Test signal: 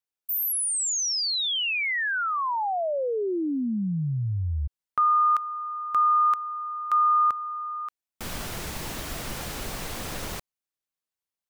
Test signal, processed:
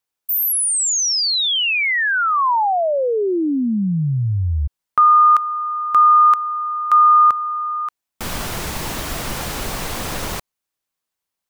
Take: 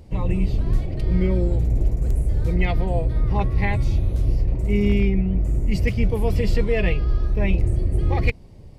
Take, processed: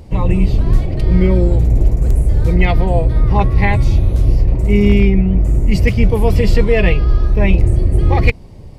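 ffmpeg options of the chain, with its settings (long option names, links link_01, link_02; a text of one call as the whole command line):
ffmpeg -i in.wav -af "equalizer=frequency=1000:width_type=o:width=0.77:gain=2.5,volume=8dB" out.wav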